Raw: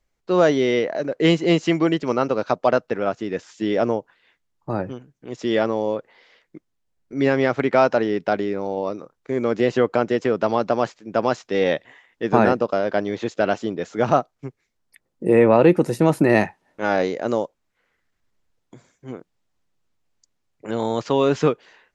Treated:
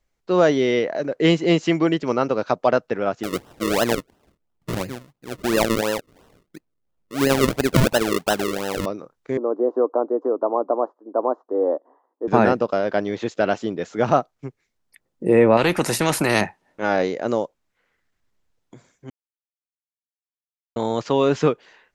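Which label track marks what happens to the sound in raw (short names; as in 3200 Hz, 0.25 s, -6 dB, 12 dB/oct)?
3.230000	8.860000	decimation with a swept rate 38× 2.9 Hz
9.370000	12.280000	elliptic band-pass 280–1100 Hz
15.570000	16.410000	spectral compressor 2:1
19.100000	20.760000	mute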